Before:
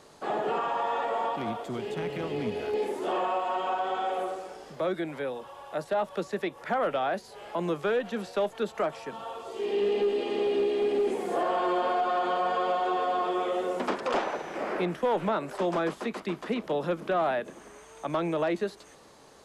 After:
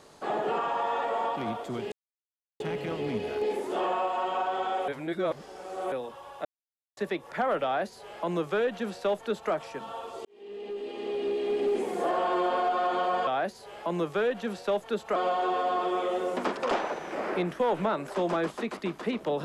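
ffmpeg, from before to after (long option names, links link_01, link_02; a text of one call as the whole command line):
ffmpeg -i in.wav -filter_complex "[0:a]asplit=9[link_01][link_02][link_03][link_04][link_05][link_06][link_07][link_08][link_09];[link_01]atrim=end=1.92,asetpts=PTS-STARTPTS,afade=type=out:start_time=1.916:duration=0.004:curve=hsin,apad=pad_dur=0.68[link_10];[link_02]atrim=start=1.92:end=4.202,asetpts=PTS-STARTPTS,afade=type=in:duration=0.004:curve=hsin[link_11];[link_03]atrim=start=4.198:end=5.242,asetpts=PTS-STARTPTS,areverse[link_12];[link_04]atrim=start=5.238:end=5.77,asetpts=PTS-STARTPTS,afade=type=out:start_time=0.528:duration=0.004:curve=hsin[link_13];[link_05]atrim=start=5.77:end=6.29,asetpts=PTS-STARTPTS,volume=0[link_14];[link_06]atrim=start=6.29:end=9.57,asetpts=PTS-STARTPTS,afade=type=in:duration=0.004:curve=hsin,afade=type=out:start_time=3.276:duration=0.004:curve=hsin[link_15];[link_07]atrim=start=9.57:end=12.592,asetpts=PTS-STARTPTS,afade=type=in:duration=1.58[link_16];[link_08]atrim=start=6.958:end=8.852[link_17];[link_09]atrim=start=12.588[link_18];[link_10][link_11]concat=n=2:v=0:a=1[link_19];[link_19][link_12]acrossfade=duration=0.004:curve1=hsin:curve2=hsin[link_20];[link_13][link_14][link_15][link_16]concat=n=4:v=0:a=1[link_21];[link_20][link_21]acrossfade=duration=0.004:curve1=hsin:curve2=hsin[link_22];[link_22][link_17]acrossfade=duration=0.004:curve1=hsin:curve2=hsin[link_23];[link_23][link_18]acrossfade=duration=0.004:curve1=hsin:curve2=hsin" out.wav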